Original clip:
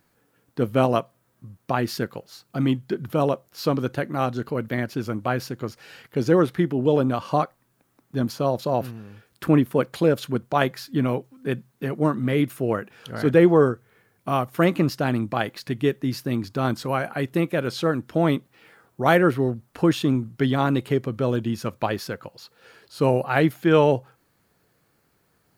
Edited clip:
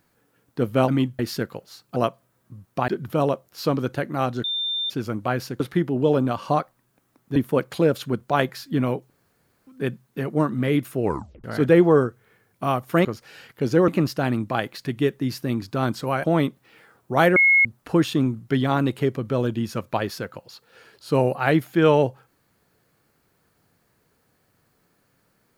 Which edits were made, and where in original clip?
0:00.88–0:01.80: swap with 0:02.57–0:02.88
0:04.44–0:04.90: beep over 3,590 Hz −23 dBFS
0:05.60–0:06.43: move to 0:14.70
0:08.19–0:09.58: remove
0:11.32: splice in room tone 0.57 s
0:12.68: tape stop 0.41 s
0:17.06–0:18.13: remove
0:19.25–0:19.54: beep over 2,170 Hz −12.5 dBFS

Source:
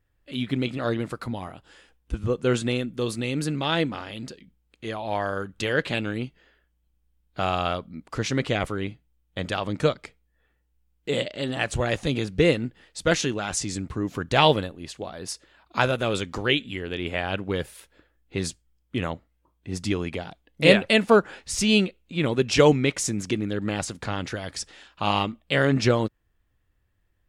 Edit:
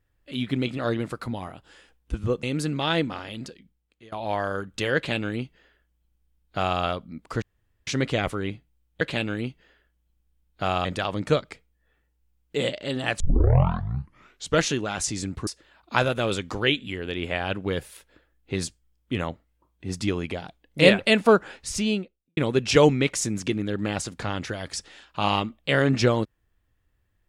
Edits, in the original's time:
0:02.43–0:03.25: remove
0:04.25–0:04.94: fade out, to −23 dB
0:05.78–0:07.62: duplicate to 0:09.38
0:08.24: splice in room tone 0.45 s
0:11.73: tape start 1.43 s
0:14.00–0:15.30: remove
0:21.38–0:22.20: fade out and dull

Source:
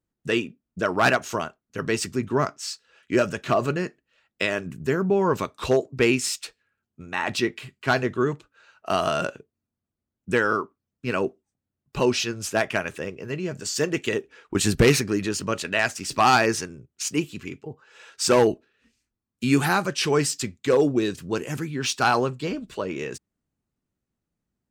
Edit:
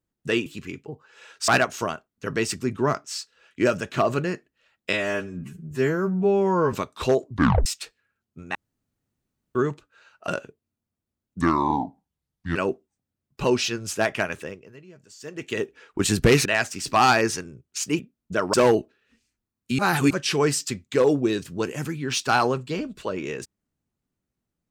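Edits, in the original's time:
0:00.46–0:01.00: swap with 0:17.24–0:18.26
0:04.45–0:05.35: time-stretch 2×
0:05.91: tape stop 0.37 s
0:07.17–0:08.17: fill with room tone
0:08.90–0:09.19: remove
0:10.32–0:11.11: play speed 69%
0:12.93–0:14.18: duck −18.5 dB, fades 0.50 s quadratic
0:15.01–0:15.70: remove
0:19.51–0:19.83: reverse

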